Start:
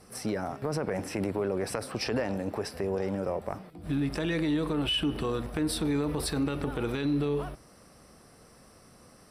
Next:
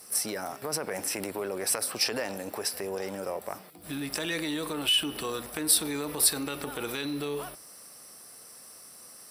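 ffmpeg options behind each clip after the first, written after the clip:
-af "aemphasis=mode=production:type=riaa"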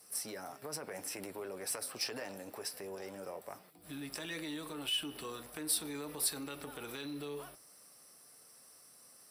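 -filter_complex "[0:a]flanger=delay=6.5:depth=1.1:regen=-62:speed=1.8:shape=triangular,acrossover=split=550|1700[a][b][c];[c]acrusher=bits=6:mode=log:mix=0:aa=0.000001[d];[a][b][d]amix=inputs=3:normalize=0,volume=-6dB"

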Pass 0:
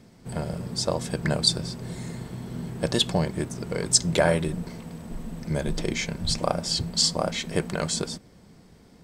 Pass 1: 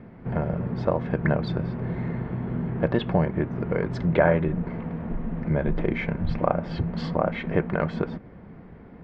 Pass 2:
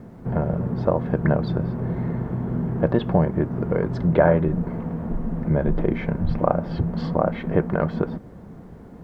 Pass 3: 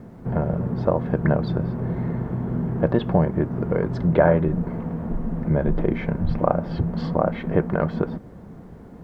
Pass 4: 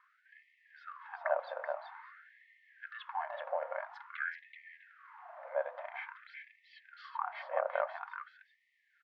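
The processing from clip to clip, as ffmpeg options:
-filter_complex "[0:a]lowpass=f=2.1k:w=0.5412,lowpass=f=2.1k:w=1.3066,asplit=2[a][b];[b]acompressor=threshold=-34dB:ratio=6,volume=3dB[c];[a][c]amix=inputs=2:normalize=0"
-af "equalizer=f=2.3k:t=o:w=1:g=-7.5,acrusher=bits=10:mix=0:aa=0.000001,highshelf=f=4.7k:g=-9,volume=3.5dB"
-af anull
-af "highpass=370,lowpass=2.6k,aecho=1:1:380:0.562,afftfilt=real='re*gte(b*sr/1024,480*pow(1800/480,0.5+0.5*sin(2*PI*0.49*pts/sr)))':imag='im*gte(b*sr/1024,480*pow(1800/480,0.5+0.5*sin(2*PI*0.49*pts/sr)))':win_size=1024:overlap=0.75,volume=-6dB"

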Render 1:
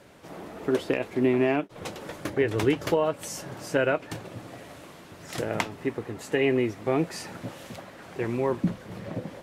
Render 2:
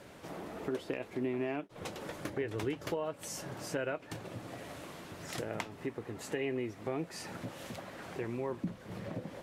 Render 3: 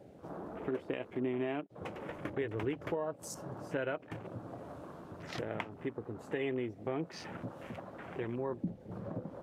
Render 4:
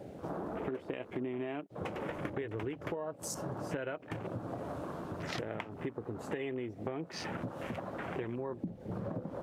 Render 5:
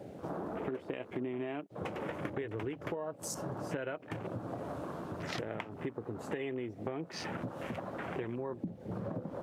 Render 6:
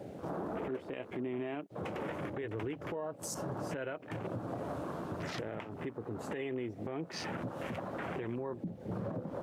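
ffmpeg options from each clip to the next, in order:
-af "acompressor=threshold=-42dB:ratio=2"
-af "afwtdn=0.00398"
-af "acompressor=threshold=-43dB:ratio=6,volume=8dB"
-af "highpass=68"
-af "alimiter=level_in=7dB:limit=-24dB:level=0:latency=1:release=21,volume=-7dB,volume=1.5dB"

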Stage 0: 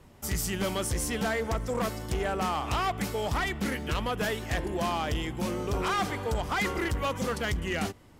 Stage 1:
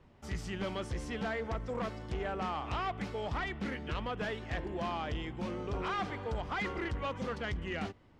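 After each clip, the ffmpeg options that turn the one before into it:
-af "lowpass=3.7k,volume=-6.5dB"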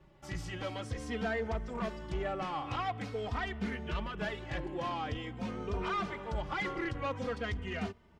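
-filter_complex "[0:a]asplit=2[a][b];[b]adelay=3,afreqshift=-0.47[c];[a][c]amix=inputs=2:normalize=1,volume=3dB"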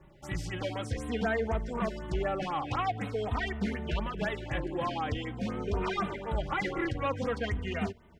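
-af "afftfilt=real='re*(1-between(b*sr/1024,980*pow(5900/980,0.5+0.5*sin(2*PI*4*pts/sr))/1.41,980*pow(5900/980,0.5+0.5*sin(2*PI*4*pts/sr))*1.41))':imag='im*(1-between(b*sr/1024,980*pow(5900/980,0.5+0.5*sin(2*PI*4*pts/sr))/1.41,980*pow(5900/980,0.5+0.5*sin(2*PI*4*pts/sr))*1.41))':win_size=1024:overlap=0.75,volume=4.5dB"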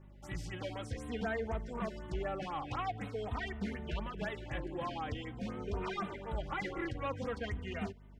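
-af "aeval=exprs='val(0)+0.00398*(sin(2*PI*50*n/s)+sin(2*PI*2*50*n/s)/2+sin(2*PI*3*50*n/s)/3+sin(2*PI*4*50*n/s)/4+sin(2*PI*5*50*n/s)/5)':c=same,volume=-6.5dB"

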